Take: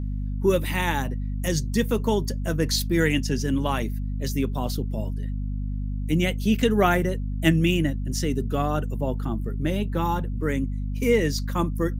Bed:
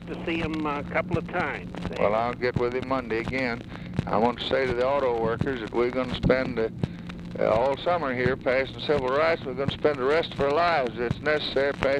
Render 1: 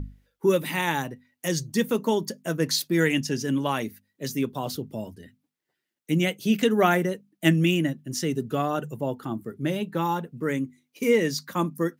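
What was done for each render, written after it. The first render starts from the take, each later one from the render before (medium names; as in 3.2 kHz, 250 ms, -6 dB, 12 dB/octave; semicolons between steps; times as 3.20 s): hum notches 50/100/150/200/250 Hz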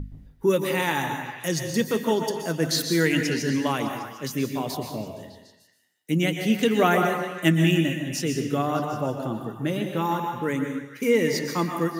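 repeats whose band climbs or falls 151 ms, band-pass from 830 Hz, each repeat 0.7 oct, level -7 dB; plate-style reverb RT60 0.74 s, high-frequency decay 0.9×, pre-delay 110 ms, DRR 5 dB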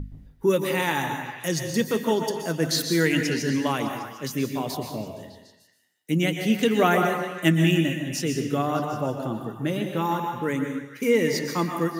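no audible change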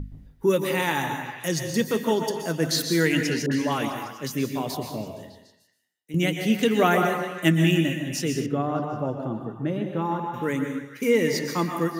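3.46–4.11 s: phase dispersion highs, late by 55 ms, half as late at 1.2 kHz; 5.14–6.14 s: fade out, to -15 dB; 8.46–10.34 s: low-pass 1.1 kHz 6 dB/octave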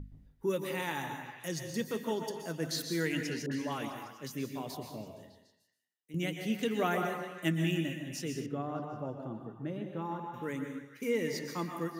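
trim -11 dB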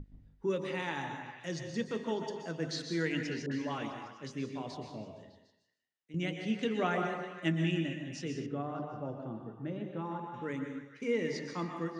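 Bessel low-pass 4.7 kHz, order 8; de-hum 50.12 Hz, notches 25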